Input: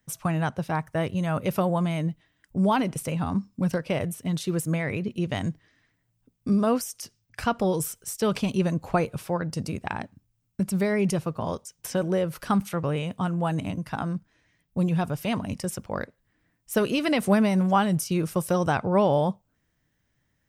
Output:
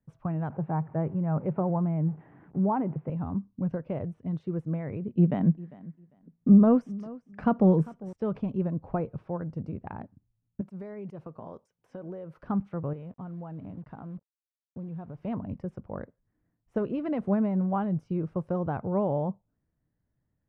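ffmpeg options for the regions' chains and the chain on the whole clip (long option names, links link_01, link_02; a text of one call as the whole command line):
ffmpeg -i in.wav -filter_complex "[0:a]asettb=1/sr,asplit=3[link_01][link_02][link_03];[link_01]atrim=end=0.504[link_04];[link_02]atrim=start=0.5:end=3.1,asetpts=PTS-STARTPTS,afade=type=in:duration=0.004:curve=qsin,afade=type=out:start_time=2.596:duration=0.004:curve=qsin,aeval=exprs='val(0)+0.5*0.0112*sgn(val(0))':channel_layout=same,highpass=140,equalizer=frequency=150:width_type=q:width=4:gain=8,equalizer=frequency=370:width_type=q:width=4:gain=3,equalizer=frequency=840:width_type=q:width=4:gain=6,lowpass=frequency=2400:width=0.5412,lowpass=frequency=2400:width=1.3066[link_05];[link_03]atrim=start=3.096[link_06];[link_04][link_05]acrossfade=duration=0.004:curve1=hsin:curve2=qsin[link_07];[link_07][link_06]acrossfade=duration=0.004:curve1=qsin:curve2=hsin,asettb=1/sr,asplit=3[link_08][link_09][link_10];[link_08]atrim=end=5.174[link_11];[link_09]atrim=start=5.17:end=8.13,asetpts=PTS-STARTPTS,afade=type=in:duration=0.004:curve=qsin,afade=type=out:start_time=2.956:duration=0.004:curve=qsin,lowshelf=frequency=130:width_type=q:width=3:gain=-9,acontrast=56,aecho=1:1:399|798:0.1|0.018,atrim=end_sample=130536[link_12];[link_10]atrim=start=8.126[link_13];[link_11][link_12]acrossfade=duration=0.004:curve1=hsin:curve2=qsin[link_14];[link_14][link_13]acrossfade=duration=0.004:curve1=qsin:curve2=hsin,asettb=1/sr,asplit=3[link_15][link_16][link_17];[link_15]atrim=end=10.614[link_18];[link_16]atrim=start=10.61:end=12.43,asetpts=PTS-STARTPTS,afade=type=in:duration=0.004:curve=qsin,afade=type=out:start_time=1.816:duration=0.004:curve=qsin,aemphasis=mode=production:type=bsi,acompressor=threshold=-29dB:ratio=12:attack=3.2:release=140:knee=1:detection=peak[link_19];[link_17]atrim=start=12.426[link_20];[link_18][link_19]acrossfade=duration=0.004:curve1=hsin:curve2=qsin[link_21];[link_21][link_20]acrossfade=duration=0.004:curve1=qsin:curve2=hsin,asettb=1/sr,asplit=3[link_22][link_23][link_24];[link_22]atrim=end=12.934[link_25];[link_23]atrim=start=12.93:end=15.23,asetpts=PTS-STARTPTS,afade=type=in:duration=0.004:curve=qsin,afade=type=out:start_time=2.296:duration=0.004:curve=qsin,lowshelf=frequency=90:gain=-3.5,acompressor=threshold=-33dB:ratio=3:attack=3.2:release=140:knee=1:detection=peak,acrusher=bits=7:mix=0:aa=0.5[link_26];[link_24]atrim=start=15.226[link_27];[link_25][link_26]acrossfade=duration=0.004:curve1=hsin:curve2=qsin[link_28];[link_28][link_27]acrossfade=duration=0.004:curve1=qsin:curve2=hsin,lowpass=1100,lowshelf=frequency=470:gain=5,volume=-8.5dB" out.wav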